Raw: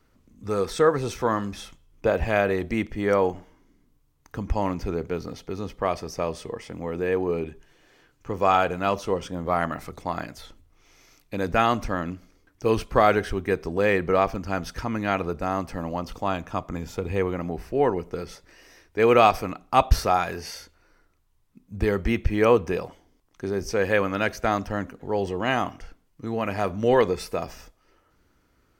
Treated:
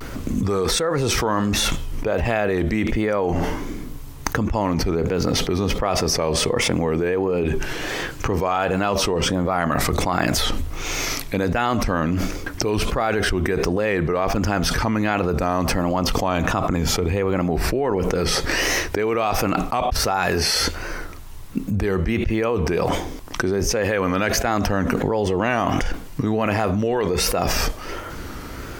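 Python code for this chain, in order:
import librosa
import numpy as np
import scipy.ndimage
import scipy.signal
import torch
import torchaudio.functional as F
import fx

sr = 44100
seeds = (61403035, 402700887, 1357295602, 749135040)

y = fx.vibrato(x, sr, rate_hz=1.4, depth_cents=94.0)
y = fx.env_flatten(y, sr, amount_pct=100)
y = y * librosa.db_to_amplitude(-8.5)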